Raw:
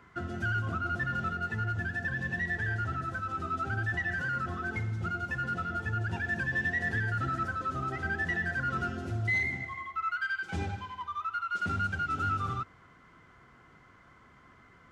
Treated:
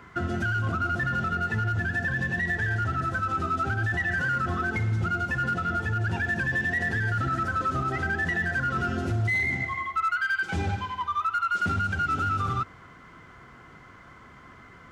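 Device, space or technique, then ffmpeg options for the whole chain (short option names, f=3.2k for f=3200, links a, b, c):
limiter into clipper: -af "alimiter=level_in=3.5dB:limit=-24dB:level=0:latency=1:release=62,volume=-3.5dB,asoftclip=type=hard:threshold=-29dB,volume=8.5dB"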